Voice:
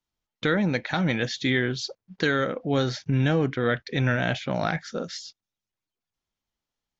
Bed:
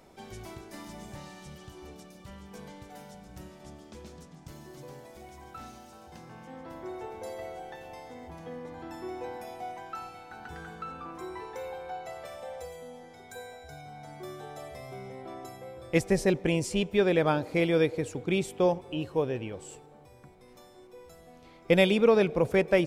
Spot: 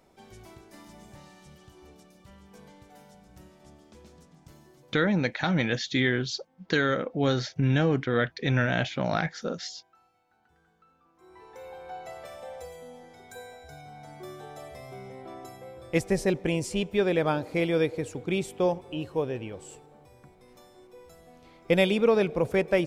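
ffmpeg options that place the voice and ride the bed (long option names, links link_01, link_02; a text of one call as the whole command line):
ffmpeg -i stem1.wav -i stem2.wav -filter_complex "[0:a]adelay=4500,volume=-1dB[link_01];[1:a]volume=17.5dB,afade=type=out:start_time=4.51:duration=0.57:silence=0.125893,afade=type=in:start_time=11.16:duration=0.9:silence=0.0707946[link_02];[link_01][link_02]amix=inputs=2:normalize=0" out.wav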